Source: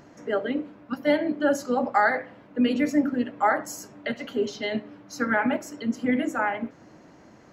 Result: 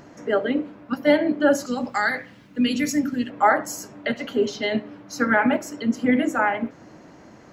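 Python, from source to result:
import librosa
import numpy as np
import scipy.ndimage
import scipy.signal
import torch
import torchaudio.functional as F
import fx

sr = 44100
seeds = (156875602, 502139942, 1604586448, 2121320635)

y = fx.curve_eq(x, sr, hz=(170.0, 650.0, 6100.0), db=(0, -12, 9), at=(1.66, 3.3))
y = y * 10.0 ** (4.5 / 20.0)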